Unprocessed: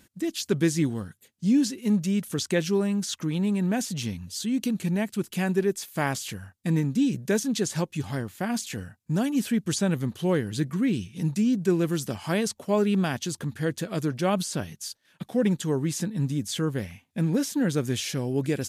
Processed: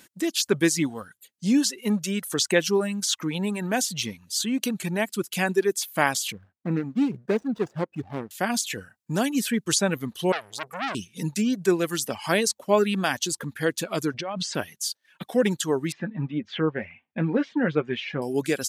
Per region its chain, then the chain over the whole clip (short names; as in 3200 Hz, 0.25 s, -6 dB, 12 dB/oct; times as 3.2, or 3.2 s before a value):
6.32–8.31 median filter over 41 samples + LPF 2100 Hz 6 dB/oct
10.32–10.95 low shelf 360 Hz -4 dB + core saturation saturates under 2900 Hz
14.14–14.55 negative-ratio compressor -30 dBFS + air absorption 150 m
15.92–18.22 LPF 2600 Hz 24 dB/oct + doubler 13 ms -10 dB
whole clip: reverb removal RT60 1.1 s; HPF 500 Hz 6 dB/oct; gain +7.5 dB